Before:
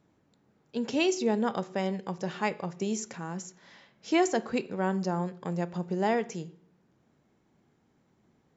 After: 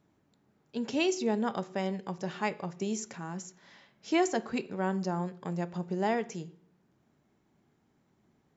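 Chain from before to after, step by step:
notch filter 500 Hz, Q 12
level −2 dB

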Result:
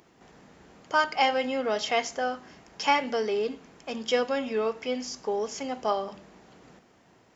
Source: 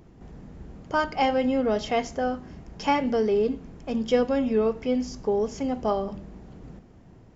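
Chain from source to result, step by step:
high-pass filter 1,300 Hz 6 dB per octave
level +5.5 dB

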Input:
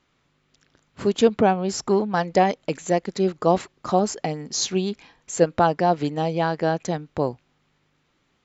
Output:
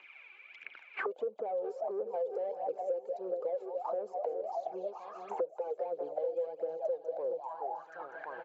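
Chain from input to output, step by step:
echo with a time of its own for lows and highs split 700 Hz, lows 416 ms, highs 195 ms, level −13 dB
in parallel at −2.5 dB: downward compressor, threshold −26 dBFS, peak gain reduction 14.5 dB
on the sum: phase shifter 1.5 Hz, delay 2.7 ms, feedback 63%
brickwall limiter −10 dBFS, peak gain reduction 9.5 dB
high-pass filter 130 Hz
flat-topped bell 550 Hz +8 dB
repeating echo 1,071 ms, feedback 35%, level −16.5 dB
soft clipping −9.5 dBFS, distortion −13 dB
envelope filter 510–2,400 Hz, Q 11, down, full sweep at −15 dBFS
spectral tilt +2.5 dB per octave
notch filter 1,900 Hz, Q 8.7
multiband upward and downward compressor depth 100%
level −8 dB

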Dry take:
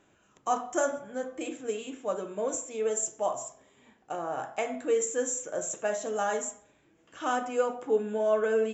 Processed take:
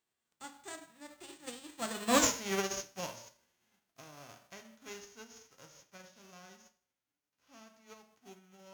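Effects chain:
spectral envelope flattened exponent 0.3
source passing by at 0:02.22, 43 m/s, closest 3.9 metres
four-comb reverb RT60 0.33 s, combs from 33 ms, DRR 18.5 dB
level +6.5 dB

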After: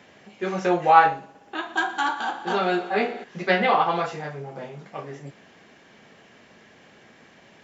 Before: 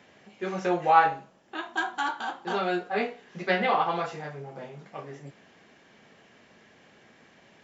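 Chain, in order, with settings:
0:01.11–0:03.24: echo machine with several playback heads 60 ms, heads first and second, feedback 72%, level −19 dB
level +4.5 dB

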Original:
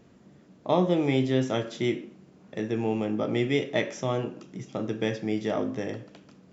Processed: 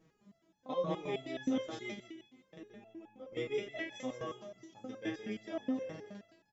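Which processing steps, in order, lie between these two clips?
0:01.93–0:03.32: downward compressor 4 to 1, threshold −40 dBFS, peak gain reduction 15 dB
repeating echo 168 ms, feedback 37%, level −6.5 dB
step-sequenced resonator 9.5 Hz 160–850 Hz
level +2.5 dB

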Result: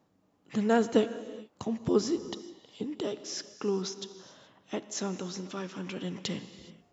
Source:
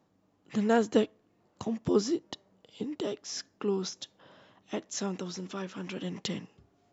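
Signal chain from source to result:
reverb whose tail is shaped and stops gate 450 ms flat, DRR 12 dB

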